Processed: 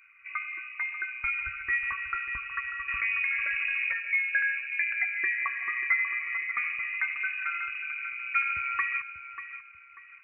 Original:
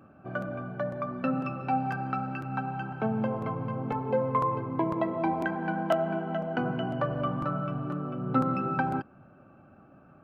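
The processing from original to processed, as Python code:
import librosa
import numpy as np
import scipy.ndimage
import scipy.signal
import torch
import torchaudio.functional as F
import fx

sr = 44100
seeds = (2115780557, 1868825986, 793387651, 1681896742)

p1 = fx.envelope_sharpen(x, sr, power=1.5)
p2 = scipy.signal.sosfilt(scipy.signal.bessel(2, 240.0, 'highpass', norm='mag', fs=sr, output='sos'), p1)
p3 = fx.freq_invert(p2, sr, carrier_hz=2700)
p4 = p3 + fx.echo_feedback(p3, sr, ms=590, feedback_pct=33, wet_db=-12.0, dry=0)
y = fx.env_flatten(p4, sr, amount_pct=70, at=(2.88, 3.93))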